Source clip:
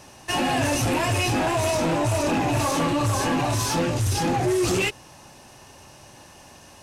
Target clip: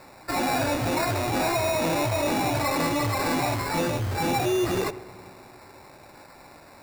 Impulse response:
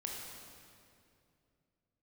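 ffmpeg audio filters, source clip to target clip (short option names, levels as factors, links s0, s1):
-filter_complex "[0:a]asplit=2[s0][s1];[s1]highpass=f=720:p=1,volume=2.51,asoftclip=type=tanh:threshold=0.141[s2];[s0][s2]amix=inputs=2:normalize=0,lowpass=f=1500:p=1,volume=0.501,acrusher=samples=14:mix=1:aa=0.000001,asplit=2[s3][s4];[1:a]atrim=start_sample=2205,lowpass=3100,adelay=76[s5];[s4][s5]afir=irnorm=-1:irlink=0,volume=0.158[s6];[s3][s6]amix=inputs=2:normalize=0"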